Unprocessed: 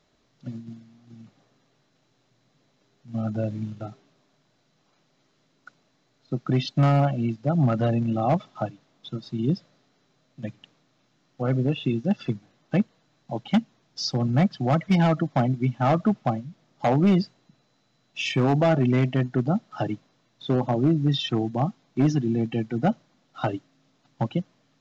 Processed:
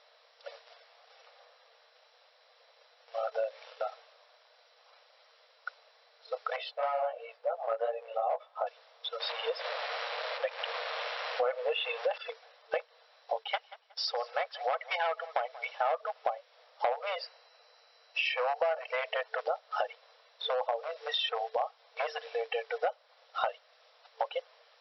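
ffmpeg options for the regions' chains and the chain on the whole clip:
-filter_complex "[0:a]asettb=1/sr,asplit=3[s0][s1][s2];[s0]atrim=end=6.564[s3];[s1]atrim=start=6.56:end=8.67,asetpts=PTS-STARTPTS,afade=t=in:d=0.004:c=qsin,afade=t=out:st=2.106:d=0.004:c=qsin,lowpass=f=1100:p=1,flanger=delay=15:depth=3:speed=2.9[s4];[s2]atrim=start=8.666[s5];[s3][s4]acrossfade=d=0.004:c1=hsin:c2=qsin[s6];[s6][s5]acrossfade=d=0.004:c1=qsin:c2=hsin,asettb=1/sr,asplit=3[s7][s8][s9];[s7]atrim=end=9.204[s10];[s8]atrim=start=9.2:end=12.18,asetpts=PTS-STARTPTS,afade=t=in:d=0.004:c=qsin,afade=t=out:st=2.976:d=0.004:c=qsin,aeval=exprs='val(0)+0.5*0.00891*sgn(val(0))':c=same,highpass=150,lowpass=4600,acontrast=73[s11];[s9]atrim=start=12.176[s12];[s10][s11]acrossfade=d=0.004:c1=hsin:c2=qsin[s13];[s13][s12]acrossfade=d=0.004:c1=qsin:c2=hsin,asettb=1/sr,asplit=3[s14][s15][s16];[s14]atrim=end=13.394[s17];[s15]atrim=start=13.39:end=15.64,asetpts=PTS-STARTPTS,afade=t=in:d=0.004:c=qsin,afade=t=out:st=2.246:d=0.004:c=qsin,agate=range=0.398:threshold=0.00141:ratio=16:release=100:detection=peak,equalizer=f=550:t=o:w=1:g=-4.5,asplit=2[s18][s19];[s19]adelay=182,lowpass=f=3100:p=1,volume=0.075,asplit=2[s20][s21];[s21]adelay=182,lowpass=f=3100:p=1,volume=0.25[s22];[s18][s20][s22]amix=inputs=3:normalize=0,atrim=end_sample=99225[s23];[s16]atrim=start=15.636[s24];[s17][s23]acrossfade=d=0.004:c1=hsin:c2=qsin[s25];[s25][s24]acrossfade=d=0.004:c1=qsin:c2=hsin,asettb=1/sr,asplit=3[s26][s27][s28];[s26]atrim=end=17.224[s29];[s27]atrim=start=17.22:end=18.96,asetpts=PTS-STARTPTS,afade=t=in:d=0.004:c=qsin,afade=t=out:st=1.736:d=0.004:c=qsin,highshelf=f=5800:g=6.5,bandreject=f=3500:w=6.5[s30];[s28]atrim=start=18.956[s31];[s29][s30]acrossfade=d=0.004:c1=hsin:c2=qsin[s32];[s32][s31]acrossfade=d=0.004:c1=qsin:c2=hsin,acrossover=split=3800[s33][s34];[s34]acompressor=threshold=0.00158:ratio=4:attack=1:release=60[s35];[s33][s35]amix=inputs=2:normalize=0,afftfilt=real='re*between(b*sr/4096,450,5700)':imag='im*between(b*sr/4096,450,5700)':win_size=4096:overlap=0.75,acompressor=threshold=0.0126:ratio=4,volume=2.51"

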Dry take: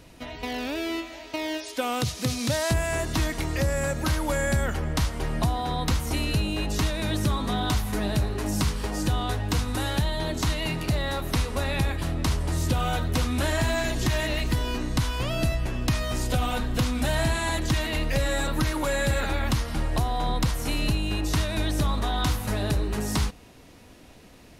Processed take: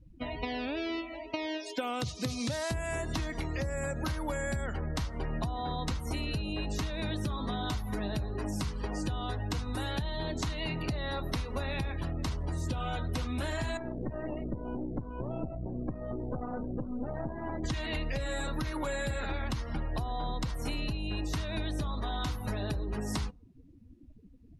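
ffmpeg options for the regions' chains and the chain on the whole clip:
-filter_complex "[0:a]asettb=1/sr,asplit=3[s0][s1][s2];[s0]atrim=end=13.774[s3];[s1]atrim=start=13.77:end=17.64,asetpts=PTS-STARTPTS,afade=t=in:d=0.004:c=qsin,afade=t=out:st=3.866:d=0.004:c=qsin,bandpass=f=300:t=q:w=0.66,aeval=exprs='clip(val(0),-1,0.0112)':c=same[s4];[s2]atrim=start=17.636[s5];[s3][s4]acrossfade=d=0.004:c1=hsin:c2=qsin[s6];[s6][s5]acrossfade=d=0.004:c1=qsin:c2=hsin,afftdn=nr=34:nf=-39,acompressor=threshold=0.0224:ratio=6,volume=1.26"

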